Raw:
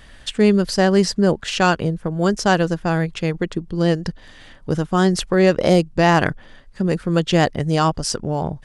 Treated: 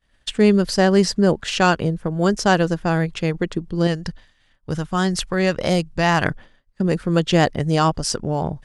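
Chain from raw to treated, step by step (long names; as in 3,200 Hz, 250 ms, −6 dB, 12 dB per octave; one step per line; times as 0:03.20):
downward expander −31 dBFS
0:03.87–0:06.24: parametric band 370 Hz −7 dB 2 octaves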